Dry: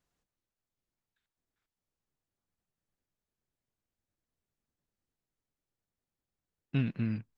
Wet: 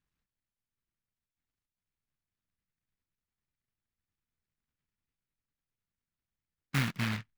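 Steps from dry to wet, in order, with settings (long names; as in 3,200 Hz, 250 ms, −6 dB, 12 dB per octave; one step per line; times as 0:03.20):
adaptive Wiener filter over 25 samples
parametric band 320 Hz −2 dB
short delay modulated by noise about 1,700 Hz, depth 0.5 ms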